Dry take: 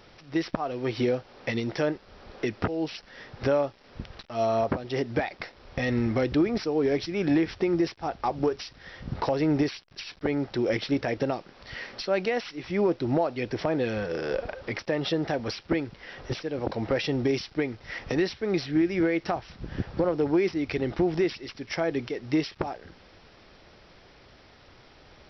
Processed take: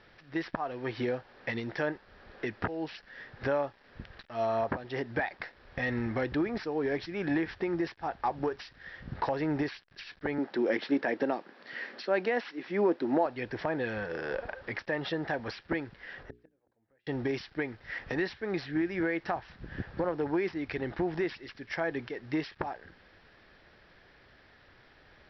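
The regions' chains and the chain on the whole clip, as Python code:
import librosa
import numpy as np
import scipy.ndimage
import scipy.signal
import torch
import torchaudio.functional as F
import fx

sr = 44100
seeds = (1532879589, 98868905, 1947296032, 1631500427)

y = fx.chain(x, sr, fx.highpass(hz=240.0, slope=24),
    fx.low_shelf(hz=320.0, db=11.5), at=(10.38, 13.26))
y = fx.chain(y, sr, fx.gate_flip(shuts_db=-24.0, range_db=-38),
    fx.high_shelf(hz=2600.0, db=-11.0),
    fx.hum_notches(base_hz=60, count=7), at=(16.23, 17.07))
y = fx.dynamic_eq(y, sr, hz=910.0, q=2.2, threshold_db=-45.0, ratio=4.0, max_db=6)
y = scipy.signal.sosfilt(scipy.signal.butter(4, 4900.0, 'lowpass', fs=sr, output='sos'), y)
y = fx.peak_eq(y, sr, hz=1700.0, db=10.0, octaves=0.41)
y = y * 10.0 ** (-7.0 / 20.0)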